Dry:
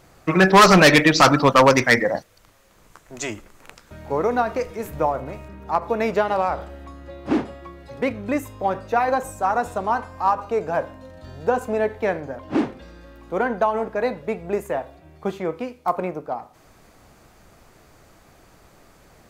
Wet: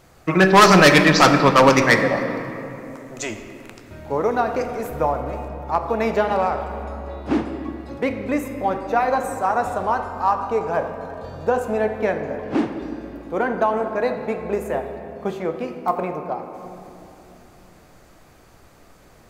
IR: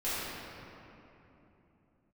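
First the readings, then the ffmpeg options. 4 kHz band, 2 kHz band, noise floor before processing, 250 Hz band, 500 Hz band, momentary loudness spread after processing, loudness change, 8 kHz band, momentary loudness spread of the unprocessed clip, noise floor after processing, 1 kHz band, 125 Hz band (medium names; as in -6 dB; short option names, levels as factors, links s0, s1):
+0.5 dB, +1.0 dB, -54 dBFS, +1.5 dB, +1.0 dB, 19 LU, +0.5 dB, +0.5 dB, 17 LU, -50 dBFS, +1.0 dB, +1.5 dB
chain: -filter_complex "[0:a]asplit=2[s0][s1];[1:a]atrim=start_sample=2205,adelay=14[s2];[s1][s2]afir=irnorm=-1:irlink=0,volume=0.178[s3];[s0][s3]amix=inputs=2:normalize=0"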